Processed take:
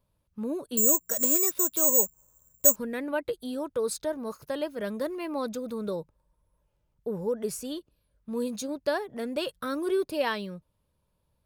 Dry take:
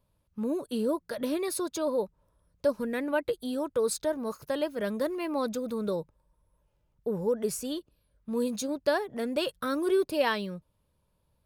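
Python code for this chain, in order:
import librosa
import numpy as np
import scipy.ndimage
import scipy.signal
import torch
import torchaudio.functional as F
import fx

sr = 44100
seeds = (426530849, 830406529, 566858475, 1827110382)

y = fx.resample_bad(x, sr, factor=6, down='filtered', up='zero_stuff', at=(0.77, 2.76))
y = y * librosa.db_to_amplitude(-1.5)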